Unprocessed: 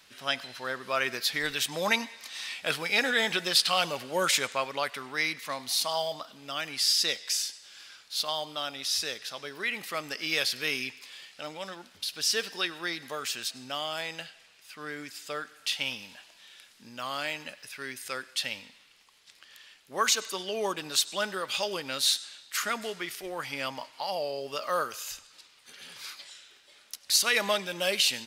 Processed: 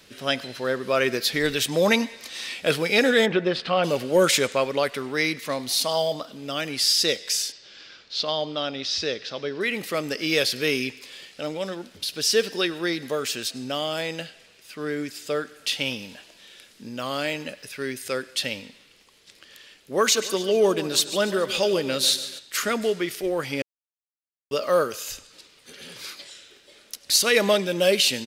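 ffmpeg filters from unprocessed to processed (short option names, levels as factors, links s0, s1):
-filter_complex "[0:a]asplit=3[s0][s1][s2];[s0]afade=t=out:st=3.25:d=0.02[s3];[s1]lowpass=2000,afade=t=in:st=3.25:d=0.02,afade=t=out:st=3.83:d=0.02[s4];[s2]afade=t=in:st=3.83:d=0.02[s5];[s3][s4][s5]amix=inputs=3:normalize=0,asettb=1/sr,asplit=3[s6][s7][s8];[s6]atrim=end=7.524[s9];[s7]atrim=start=7.52:end=9.61,asetpts=PTS-STARTPTS,afade=t=in:d=0.004:c=qsin,afade=t=out:st=2.086:d=0.004:c=qsin,lowpass=f=5400:w=0.5412,lowpass=f=5400:w=1.3066[s10];[s8]atrim=start=9.606[s11];[s9][s10]acrossfade=d=0.004:c1=hsin:c2=qsin[s12];[s12][s11]acrossfade=d=0.004:c1=qsin:c2=hsin,asplit=3[s13][s14][s15];[s13]afade=t=out:st=20.15:d=0.02[s16];[s14]aecho=1:1:143|286|429|572|715:0.2|0.0958|0.046|0.0221|0.0106,afade=t=in:st=20.15:d=0.02,afade=t=out:st=22.38:d=0.02[s17];[s15]afade=t=in:st=22.38:d=0.02[s18];[s16][s17][s18]amix=inputs=3:normalize=0,asplit=3[s19][s20][s21];[s19]atrim=end=23.62,asetpts=PTS-STARTPTS,afade=t=out:st=23.616:d=0.004:c=hsin[s22];[s20]atrim=start=23.62:end=24.51,asetpts=PTS-STARTPTS,volume=0[s23];[s21]atrim=start=24.51,asetpts=PTS-STARTPTS,afade=t=in:d=0.004:c=hsin[s24];[s22][s23][s24]concat=n=3:v=0:a=1,lowshelf=f=640:t=q:w=1.5:g=7.5,acontrast=47,volume=0.841"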